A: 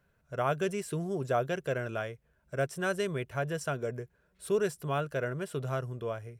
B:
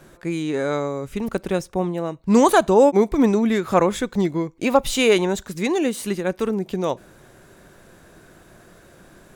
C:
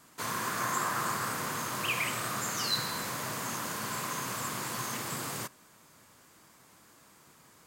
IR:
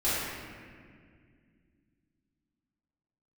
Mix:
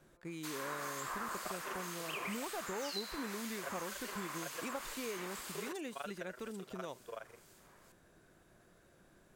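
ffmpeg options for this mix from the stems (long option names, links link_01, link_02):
-filter_complex "[0:a]highpass=560,tremolo=f=24:d=0.974,adelay=1050,volume=0dB[link_01];[1:a]deesser=0.7,volume=-16.5dB,asplit=2[link_02][link_03];[2:a]highpass=370,acrossover=split=2400[link_04][link_05];[link_04]aeval=exprs='val(0)*(1-0.7/2+0.7/2*cos(2*PI*2*n/s))':channel_layout=same[link_06];[link_05]aeval=exprs='val(0)*(1-0.7/2-0.7/2*cos(2*PI*2*n/s))':channel_layout=same[link_07];[link_06][link_07]amix=inputs=2:normalize=0,adelay=250,volume=-2dB[link_08];[link_03]apad=whole_len=328232[link_09];[link_01][link_09]sidechaincompress=threshold=-38dB:ratio=8:attack=7.8:release=590[link_10];[link_10][link_02][link_08]amix=inputs=3:normalize=0,acrossover=split=1300|3600[link_11][link_12][link_13];[link_11]acompressor=threshold=-42dB:ratio=4[link_14];[link_12]acompressor=threshold=-45dB:ratio=4[link_15];[link_13]acompressor=threshold=-48dB:ratio=4[link_16];[link_14][link_15][link_16]amix=inputs=3:normalize=0"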